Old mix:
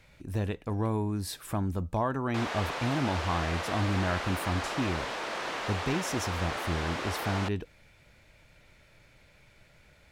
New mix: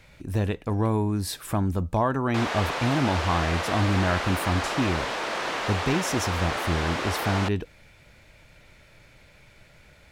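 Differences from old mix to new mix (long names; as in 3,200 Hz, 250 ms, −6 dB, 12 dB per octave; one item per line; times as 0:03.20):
speech +5.5 dB
background +5.5 dB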